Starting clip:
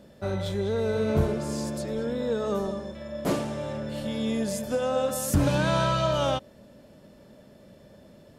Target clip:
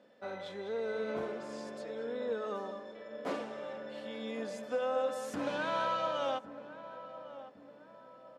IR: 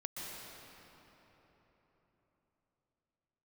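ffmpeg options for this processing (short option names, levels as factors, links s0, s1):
-filter_complex "[0:a]lowpass=2000,asplit=2[s0][s1];[1:a]atrim=start_sample=2205,lowpass=1700[s2];[s1][s2]afir=irnorm=-1:irlink=0,volume=0.119[s3];[s0][s3]amix=inputs=2:normalize=0,crystalizer=i=4.5:c=0,highpass=370,aecho=1:1:4:0.35,asplit=2[s4][s5];[s5]adelay=1107,lowpass=f=1300:p=1,volume=0.224,asplit=2[s6][s7];[s7]adelay=1107,lowpass=f=1300:p=1,volume=0.47,asplit=2[s8][s9];[s9]adelay=1107,lowpass=f=1300:p=1,volume=0.47,asplit=2[s10][s11];[s11]adelay=1107,lowpass=f=1300:p=1,volume=0.47,asplit=2[s12][s13];[s13]adelay=1107,lowpass=f=1300:p=1,volume=0.47[s14];[s4][s6][s8][s10][s12][s14]amix=inputs=6:normalize=0,volume=0.376"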